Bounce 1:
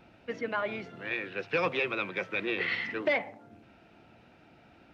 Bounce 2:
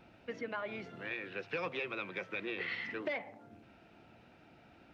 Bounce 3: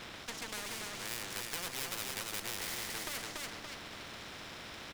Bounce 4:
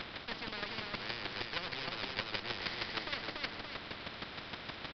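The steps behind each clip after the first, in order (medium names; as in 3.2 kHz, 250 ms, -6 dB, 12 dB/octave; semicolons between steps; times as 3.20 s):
compression 2:1, threshold -37 dBFS, peak gain reduction 8 dB; trim -2.5 dB
comb filter that takes the minimum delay 0.54 ms; feedback delay 286 ms, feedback 23%, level -5.5 dB; spectrum-flattening compressor 4:1; trim +3 dB
square tremolo 6.4 Hz, depth 60%, duty 10%; resampled via 11.025 kHz; trim +8.5 dB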